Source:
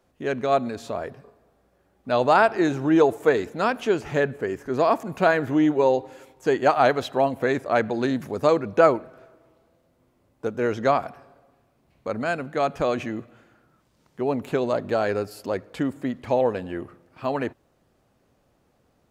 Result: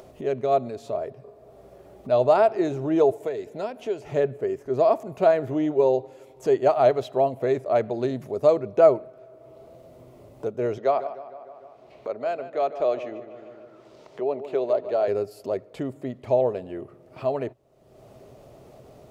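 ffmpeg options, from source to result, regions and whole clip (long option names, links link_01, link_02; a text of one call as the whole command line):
ffmpeg -i in.wav -filter_complex "[0:a]asettb=1/sr,asplit=3[link_01][link_02][link_03];[link_01]atrim=end=3.104[link_04];[link_02]atrim=start=3.1:end=4.08,asetpts=PTS-STARTPTS,afade=type=in:duration=0.004:curve=qsin,afade=type=out:start_time=0.976:duration=0.004:curve=qsin,bandreject=frequency=1200:width=6.6,acrossover=split=450|1700[link_05][link_06][link_07];[link_05]acompressor=threshold=-33dB:ratio=4[link_08];[link_06]acompressor=threshold=-30dB:ratio=4[link_09];[link_07]acompressor=threshold=-38dB:ratio=4[link_10];[link_08][link_09][link_10]amix=inputs=3:normalize=0[link_11];[link_03]atrim=start=4.076[link_12];[link_04][link_11]acrossfade=duration=0.004:curve1=hsin:curve2=qsin[link_13];[link_13][link_12]acrossfade=duration=0.004:curve1=qsin:curve2=hsin,asettb=1/sr,asplit=3[link_14][link_15][link_16];[link_14]atrim=end=10.784[link_17];[link_15]atrim=start=10.78:end=15.08,asetpts=PTS-STARTPTS,afade=type=in:duration=0.004:curve=qsin,afade=type=out:start_time=4.296:duration=0.004:curve=qsin,acrossover=split=300 6000:gain=0.178 1 0.178[link_18][link_19][link_20];[link_18][link_19][link_20]amix=inputs=3:normalize=0,asplit=2[link_21][link_22];[link_22]adelay=151,lowpass=frequency=3800:poles=1,volume=-12.5dB,asplit=2[link_23][link_24];[link_24]adelay=151,lowpass=frequency=3800:poles=1,volume=0.47,asplit=2[link_25][link_26];[link_26]adelay=151,lowpass=frequency=3800:poles=1,volume=0.47,asplit=2[link_27][link_28];[link_28]adelay=151,lowpass=frequency=3800:poles=1,volume=0.47,asplit=2[link_29][link_30];[link_30]adelay=151,lowpass=frequency=3800:poles=1,volume=0.47[link_31];[link_21][link_23][link_25][link_27][link_29][link_31]amix=inputs=6:normalize=0,atrim=end_sample=189630[link_32];[link_16]atrim=start=15.076[link_33];[link_17][link_32]acrossfade=duration=0.004:curve1=hsin:curve2=qsin[link_34];[link_34][link_33]acrossfade=duration=0.004:curve1=qsin:curve2=hsin,equalizer=frequency=125:width_type=o:width=0.33:gain=9,equalizer=frequency=400:width_type=o:width=0.33:gain=10,equalizer=frequency=630:width_type=o:width=0.33:gain=12,equalizer=frequency=1600:width_type=o:width=0.33:gain=-7,acompressor=mode=upward:threshold=-24dB:ratio=2.5,volume=-7.5dB" out.wav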